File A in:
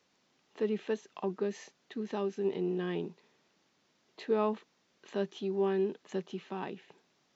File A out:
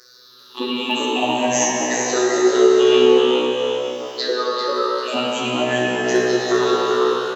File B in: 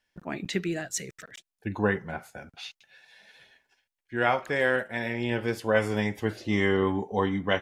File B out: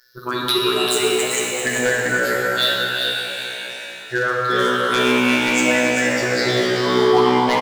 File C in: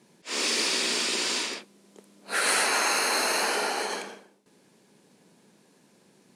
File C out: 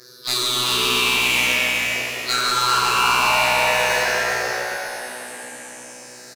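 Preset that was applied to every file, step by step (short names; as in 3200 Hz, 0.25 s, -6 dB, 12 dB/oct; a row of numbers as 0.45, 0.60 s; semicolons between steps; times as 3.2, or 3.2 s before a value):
moving spectral ripple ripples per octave 0.58, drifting -0.48 Hz, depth 24 dB; RIAA curve recording; treble ducked by the level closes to 2900 Hz, closed at -15.5 dBFS; high shelf 2500 Hz -5 dB; compressor 5:1, threshold -29 dBFS; robotiser 124 Hz; wavefolder -22 dBFS; on a send: frequency-shifting echo 0.394 s, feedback 34%, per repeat +66 Hz, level -5 dB; on the sum: plate-style reverb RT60 4 s, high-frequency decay 0.75×, DRR -4 dB; match loudness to -18 LUFS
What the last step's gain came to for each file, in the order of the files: +16.0, +13.0, +11.0 dB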